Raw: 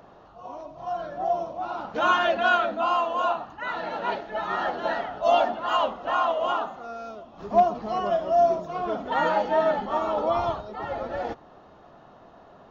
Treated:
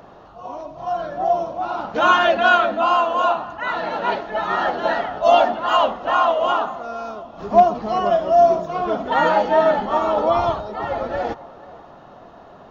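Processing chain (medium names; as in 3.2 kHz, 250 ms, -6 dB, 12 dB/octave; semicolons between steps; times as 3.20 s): band-passed feedback delay 484 ms, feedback 44%, band-pass 840 Hz, level -18 dB; trim +6.5 dB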